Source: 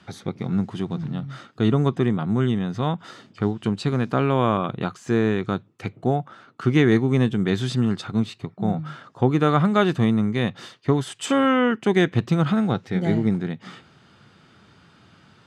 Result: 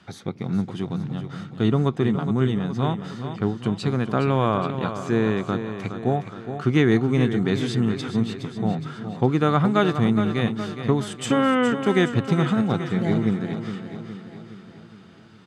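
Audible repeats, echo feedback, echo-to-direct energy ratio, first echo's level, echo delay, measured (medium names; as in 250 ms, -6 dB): 5, 55%, -8.0 dB, -9.5 dB, 416 ms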